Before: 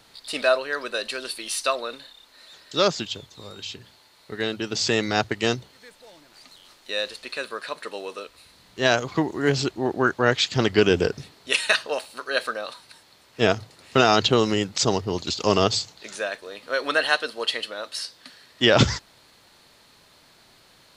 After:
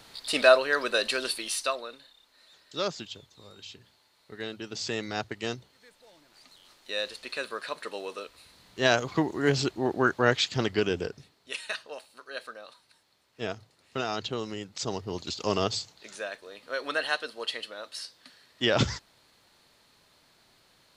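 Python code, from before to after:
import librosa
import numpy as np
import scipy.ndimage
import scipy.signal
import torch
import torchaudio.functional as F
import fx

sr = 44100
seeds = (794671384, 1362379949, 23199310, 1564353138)

y = fx.gain(x, sr, db=fx.line((1.26, 2.0), (1.94, -10.0), (5.57, -10.0), (7.35, -3.0), (10.29, -3.0), (11.35, -14.0), (14.63, -14.0), (15.15, -7.5)))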